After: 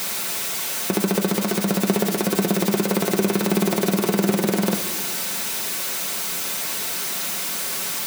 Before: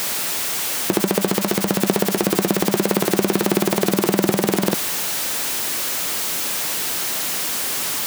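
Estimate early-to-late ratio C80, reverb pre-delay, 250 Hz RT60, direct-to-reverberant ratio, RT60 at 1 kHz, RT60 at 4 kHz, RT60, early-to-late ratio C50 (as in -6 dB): 13.5 dB, 4 ms, 2.3 s, 2.5 dB, 1.4 s, 1.1 s, 1.7 s, 12.5 dB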